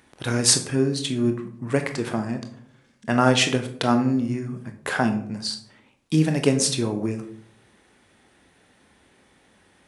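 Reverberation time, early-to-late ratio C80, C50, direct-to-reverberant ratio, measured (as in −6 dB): 0.65 s, 14.0 dB, 10.5 dB, 6.0 dB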